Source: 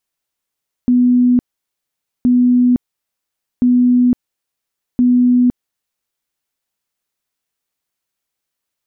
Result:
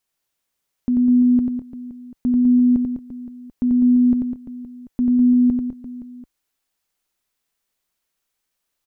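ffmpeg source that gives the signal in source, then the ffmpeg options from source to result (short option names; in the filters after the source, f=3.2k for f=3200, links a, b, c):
-f lavfi -i "aevalsrc='0.398*sin(2*PI*247*mod(t,1.37))*lt(mod(t,1.37),126/247)':d=5.48:s=44100"
-filter_complex "[0:a]asubboost=boost=2:cutoff=55,alimiter=limit=-14.5dB:level=0:latency=1:release=26,asplit=2[a][b];[b]aecho=0:1:90|202.5|343.1|518.9|738.6:0.631|0.398|0.251|0.158|0.1[c];[a][c]amix=inputs=2:normalize=0"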